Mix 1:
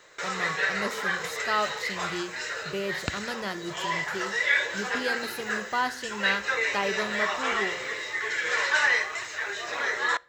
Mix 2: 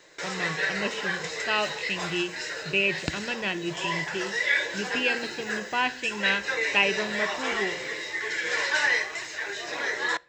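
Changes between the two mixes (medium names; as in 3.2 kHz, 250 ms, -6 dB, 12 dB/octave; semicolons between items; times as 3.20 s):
speech: add resonant low-pass 2.6 kHz, resonance Q 14; master: add graphic EQ with 31 bands 100 Hz -4 dB, 160 Hz +6 dB, 315 Hz +7 dB, 1.25 kHz -9 dB, 5 kHz +4 dB, 16 kHz -9 dB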